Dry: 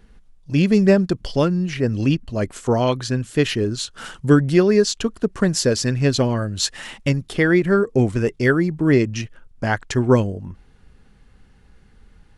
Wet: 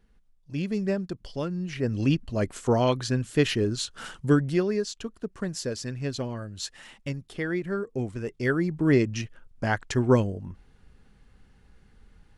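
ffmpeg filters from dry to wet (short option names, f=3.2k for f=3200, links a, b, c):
-af "volume=4dB,afade=t=in:st=1.42:d=0.77:silence=0.354813,afade=t=out:st=3.93:d=0.91:silence=0.354813,afade=t=in:st=8.23:d=0.56:silence=0.398107"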